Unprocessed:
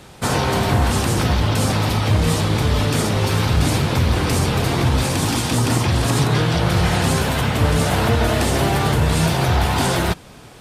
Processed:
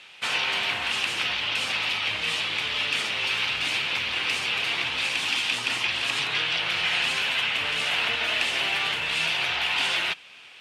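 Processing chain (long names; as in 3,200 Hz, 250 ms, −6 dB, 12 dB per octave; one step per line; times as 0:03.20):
resonant band-pass 2,700 Hz, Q 3.4
level +7.5 dB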